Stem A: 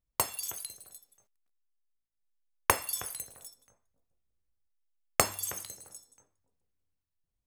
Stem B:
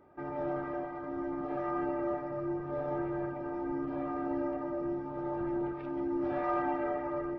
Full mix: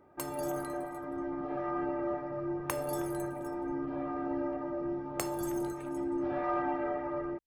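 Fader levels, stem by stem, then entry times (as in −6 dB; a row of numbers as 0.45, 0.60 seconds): −12.0, −0.5 decibels; 0.00, 0.00 seconds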